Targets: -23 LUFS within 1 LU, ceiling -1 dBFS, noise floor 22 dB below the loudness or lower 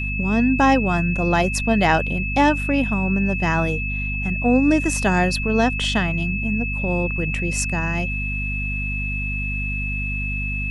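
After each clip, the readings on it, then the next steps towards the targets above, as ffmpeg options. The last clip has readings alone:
hum 50 Hz; harmonics up to 250 Hz; hum level -24 dBFS; steady tone 2600 Hz; tone level -26 dBFS; loudness -20.5 LUFS; peak -3.5 dBFS; loudness target -23.0 LUFS
-> -af "bandreject=f=50:t=h:w=4,bandreject=f=100:t=h:w=4,bandreject=f=150:t=h:w=4,bandreject=f=200:t=h:w=4,bandreject=f=250:t=h:w=4"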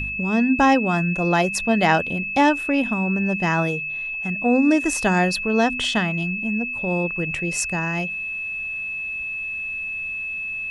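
hum none; steady tone 2600 Hz; tone level -26 dBFS
-> -af "bandreject=f=2.6k:w=30"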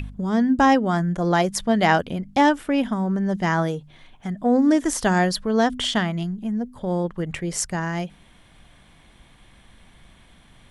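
steady tone none; loudness -22.0 LUFS; peak -4.5 dBFS; loudness target -23.0 LUFS
-> -af "volume=-1dB"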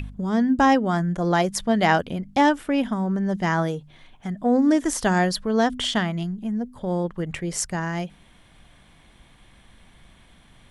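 loudness -23.0 LUFS; peak -5.5 dBFS; noise floor -54 dBFS

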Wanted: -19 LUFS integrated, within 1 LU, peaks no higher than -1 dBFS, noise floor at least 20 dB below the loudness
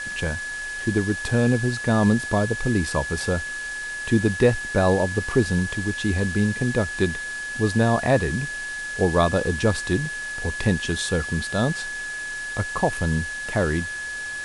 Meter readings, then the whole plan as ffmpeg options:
steady tone 1700 Hz; tone level -29 dBFS; noise floor -32 dBFS; noise floor target -44 dBFS; loudness -23.5 LUFS; peak -6.5 dBFS; loudness target -19.0 LUFS
-> -af "bandreject=f=1.7k:w=30"
-af "afftdn=nr=12:nf=-32"
-af "volume=4.5dB"

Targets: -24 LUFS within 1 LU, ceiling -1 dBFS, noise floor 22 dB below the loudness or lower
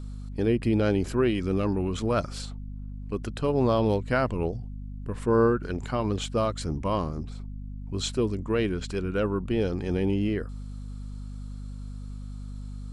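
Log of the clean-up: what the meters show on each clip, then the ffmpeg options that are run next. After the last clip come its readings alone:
hum 50 Hz; harmonics up to 250 Hz; hum level -35 dBFS; loudness -27.5 LUFS; peak -12.0 dBFS; loudness target -24.0 LUFS
-> -af "bandreject=f=50:t=h:w=6,bandreject=f=100:t=h:w=6,bandreject=f=150:t=h:w=6,bandreject=f=200:t=h:w=6,bandreject=f=250:t=h:w=6"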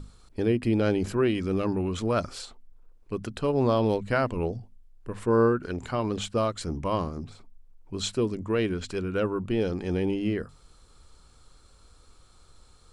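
hum none; loudness -27.5 LUFS; peak -13.0 dBFS; loudness target -24.0 LUFS
-> -af "volume=3.5dB"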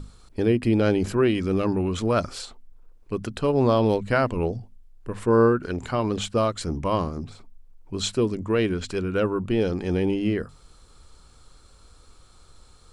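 loudness -24.0 LUFS; peak -9.5 dBFS; noise floor -53 dBFS

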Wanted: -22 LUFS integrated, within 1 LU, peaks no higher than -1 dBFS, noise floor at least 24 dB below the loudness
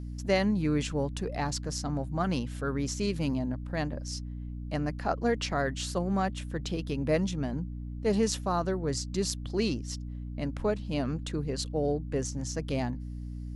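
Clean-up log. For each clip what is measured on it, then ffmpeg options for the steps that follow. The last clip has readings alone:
hum 60 Hz; harmonics up to 300 Hz; hum level -35 dBFS; loudness -31.5 LUFS; peak -12.0 dBFS; loudness target -22.0 LUFS
-> -af "bandreject=f=60:t=h:w=4,bandreject=f=120:t=h:w=4,bandreject=f=180:t=h:w=4,bandreject=f=240:t=h:w=4,bandreject=f=300:t=h:w=4"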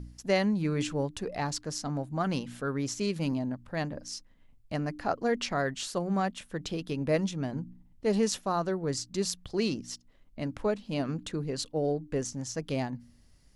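hum none; loudness -32.0 LUFS; peak -12.5 dBFS; loudness target -22.0 LUFS
-> -af "volume=10dB"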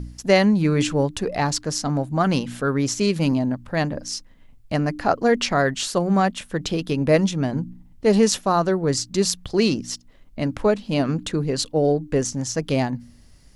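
loudness -22.0 LUFS; peak -2.5 dBFS; noise floor -50 dBFS

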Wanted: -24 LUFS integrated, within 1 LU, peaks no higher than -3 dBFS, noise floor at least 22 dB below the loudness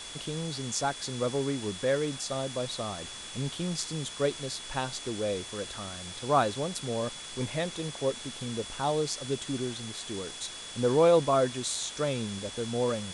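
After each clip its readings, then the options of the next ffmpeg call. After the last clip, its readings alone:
steady tone 3400 Hz; tone level -44 dBFS; noise floor -43 dBFS; noise floor target -53 dBFS; loudness -31.0 LUFS; peak -11.5 dBFS; loudness target -24.0 LUFS
-> -af "bandreject=f=3.4k:w=30"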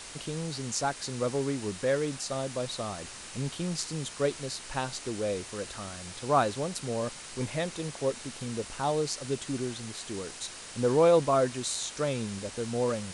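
steady tone none; noise floor -44 dBFS; noise floor target -53 dBFS
-> -af "afftdn=nr=9:nf=-44"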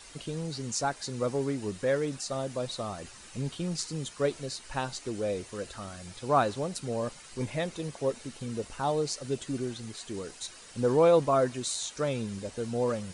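noise floor -50 dBFS; noise floor target -54 dBFS
-> -af "afftdn=nr=6:nf=-50"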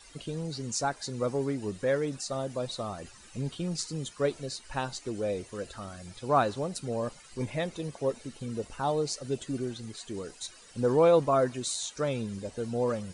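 noise floor -53 dBFS; noise floor target -54 dBFS
-> -af "afftdn=nr=6:nf=-53"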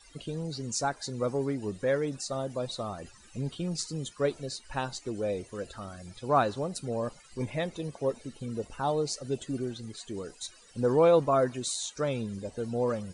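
noise floor -56 dBFS; loudness -31.5 LUFS; peak -11.5 dBFS; loudness target -24.0 LUFS
-> -af "volume=7.5dB"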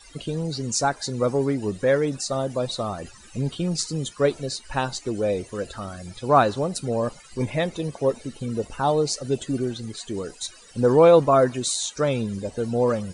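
loudness -24.0 LUFS; peak -4.0 dBFS; noise floor -48 dBFS

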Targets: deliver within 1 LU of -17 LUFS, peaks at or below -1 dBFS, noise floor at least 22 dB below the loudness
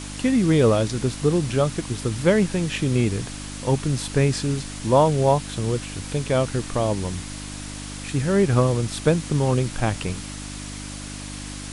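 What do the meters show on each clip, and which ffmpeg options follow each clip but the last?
hum 50 Hz; harmonics up to 300 Hz; hum level -34 dBFS; noise floor -35 dBFS; noise floor target -45 dBFS; loudness -22.5 LUFS; peak -5.5 dBFS; loudness target -17.0 LUFS
-> -af "bandreject=f=50:t=h:w=4,bandreject=f=100:t=h:w=4,bandreject=f=150:t=h:w=4,bandreject=f=200:t=h:w=4,bandreject=f=250:t=h:w=4,bandreject=f=300:t=h:w=4"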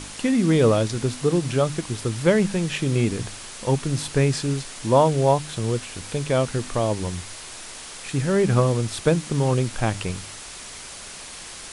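hum none; noise floor -39 dBFS; noise floor target -45 dBFS
-> -af "afftdn=nr=6:nf=-39"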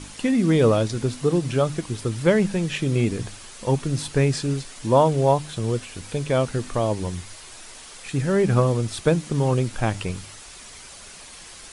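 noise floor -43 dBFS; noise floor target -45 dBFS
-> -af "afftdn=nr=6:nf=-43"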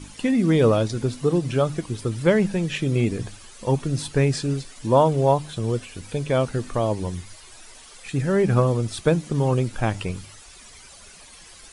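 noise floor -46 dBFS; loudness -23.0 LUFS; peak -5.5 dBFS; loudness target -17.0 LUFS
-> -af "volume=6dB,alimiter=limit=-1dB:level=0:latency=1"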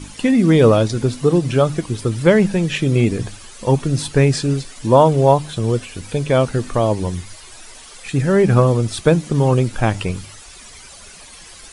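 loudness -17.0 LUFS; peak -1.0 dBFS; noise floor -40 dBFS

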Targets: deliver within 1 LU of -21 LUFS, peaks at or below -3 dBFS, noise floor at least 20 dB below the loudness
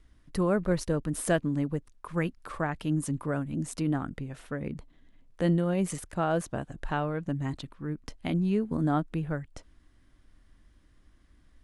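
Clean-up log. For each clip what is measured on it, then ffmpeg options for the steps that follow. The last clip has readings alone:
loudness -31.0 LUFS; peak -12.0 dBFS; loudness target -21.0 LUFS
-> -af "volume=10dB,alimiter=limit=-3dB:level=0:latency=1"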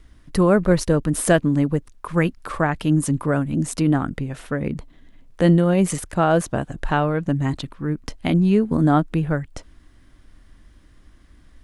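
loudness -21.0 LUFS; peak -3.0 dBFS; noise floor -51 dBFS

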